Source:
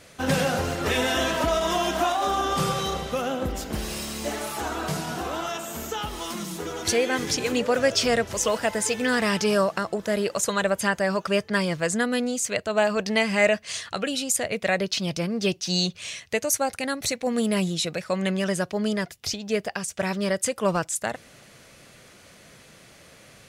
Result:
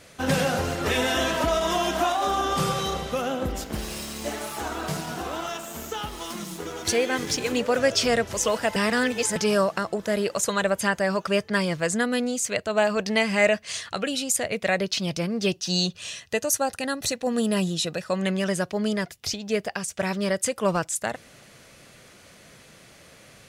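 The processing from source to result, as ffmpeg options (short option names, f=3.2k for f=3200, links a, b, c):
-filter_complex "[0:a]asettb=1/sr,asplit=3[a][b][c];[a]atrim=end=3.644[d];[b]atrim=start=3.64:end=7.74,asetpts=PTS-STARTPTS,afade=t=in:d=0.004:c=qsin,afade=t=out:st=4.096:d=0.004:c=qsin,aeval=exprs='sgn(val(0))*max(abs(val(0))-0.00631,0)':c=same[e];[c]atrim=start=7.736[f];[d][e]acrossfade=d=0.004:c1=hsin:c2=qsin[g];[g][f]acrossfade=d=0.004:c1=qsin:c2=hsin,asettb=1/sr,asplit=3[h][i][j];[h]atrim=end=15.534[k];[i]atrim=start=15.53:end=18.24,asetpts=PTS-STARTPTS,afade=t=in:d=0.004:c=qsin,afade=t=out:st=2.706:d=0.004:c=qsin,asuperstop=centerf=2200:order=4:qfactor=7[l];[j]atrim=start=18.236[m];[k][l]acrossfade=d=0.004:c1=hsin:c2=qsin[n];[n][m]acrossfade=d=0.004:c1=qsin:c2=hsin,asplit=3[o][p][q];[o]atrim=end=8.762[r];[p]atrim=start=8.758:end=9.362,asetpts=PTS-STARTPTS,areverse[s];[q]atrim=start=9.358[t];[r][s]acrossfade=d=0.004:c1=hsin:c2=hsin[u];[u][t]acrossfade=d=0.004:c1=hsin:c2=hsin"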